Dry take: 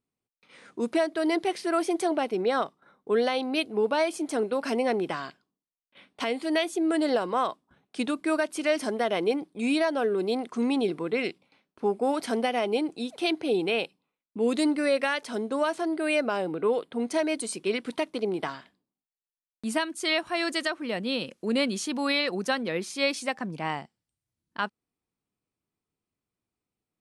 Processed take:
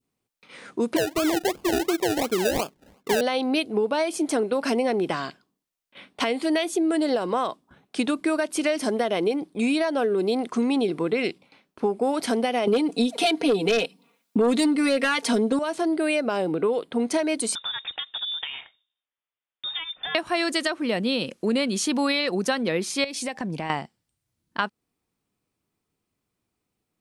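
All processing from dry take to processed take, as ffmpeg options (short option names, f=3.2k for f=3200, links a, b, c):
-filter_complex "[0:a]asettb=1/sr,asplit=3[a][b][c];[a]atrim=end=0.964[d];[b]atrim=start=0.96:end=3.21,asetpts=PTS-STARTPTS,afade=t=in:d=0.004:c=qsin,afade=t=out:st=2.246:d=0.004:c=qsin,lowpass=1.2k,acrusher=samples=32:mix=1:aa=0.000001:lfo=1:lforange=19.2:lforate=2.8[e];[c]atrim=start=3.206[f];[d][e]acrossfade=d=0.004:c1=hsin:c2=qsin[g];[g][f]acrossfade=d=0.004:c1=qsin:c2=hsin,asettb=1/sr,asplit=3[h][i][j];[h]atrim=end=12.674[k];[i]atrim=start=12.67:end=15.59,asetpts=PTS-STARTPTS,afade=t=in:d=0.004:c=qsin,afade=t=out:st=2.916:d=0.004:c=qsin,highpass=100,aecho=1:1:4.3:0.95,atrim=end_sample=128772,aeval=exprs='0.335*sin(PI/2*1.78*val(0)/0.335)':c=same[l];[j]atrim=start=15.586[m];[k][l]acrossfade=d=0.004:c1=hsin:c2=qsin[n];[n][m]acrossfade=d=0.004:c1=qsin:c2=hsin,asettb=1/sr,asplit=3[o][p][q];[o]atrim=end=17.554[r];[p]atrim=start=17.55:end=20.15,asetpts=PTS-STARTPTS,afade=t=in:d=0.004:c=qsin,afade=t=out:st=2.596:d=0.004:c=qsin,highpass=230,acompressor=threshold=-36dB:ratio=5:attack=3.2:release=140:knee=1:detection=peak,lowpass=f=3.3k:t=q:w=0.5098,lowpass=f=3.3k:t=q:w=0.6013,lowpass=f=3.3k:t=q:w=0.9,lowpass=f=3.3k:t=q:w=2.563,afreqshift=-3900[s];[q]atrim=start=20.146[t];[r][s]acrossfade=d=0.004:c1=hsin:c2=qsin[u];[u][t]acrossfade=d=0.004:c1=qsin:c2=hsin,asettb=1/sr,asplit=3[v][w][x];[v]atrim=end=23.044[y];[w]atrim=start=23.04:end=23.7,asetpts=PTS-STARTPTS,afade=t=in:d=0.004:c=qsin,afade=t=out:st=0.656:d=0.004:c=qsin,equalizer=f=1.3k:w=3.7:g=-8.5,acompressor=threshold=-33dB:ratio=10:attack=3.2:release=140:knee=1:detection=peak[z];[x]atrim=start=23.696[aa];[y][z]acrossfade=d=0.004:c1=hsin:c2=qsin[ab];[ab][aa]acrossfade=d=0.004:c1=qsin:c2=hsin,adynamicequalizer=threshold=0.0112:dfrequency=1400:dqfactor=0.71:tfrequency=1400:tqfactor=0.71:attack=5:release=100:ratio=0.375:range=2:mode=cutabove:tftype=bell,acompressor=threshold=-28dB:ratio=6,volume=8dB"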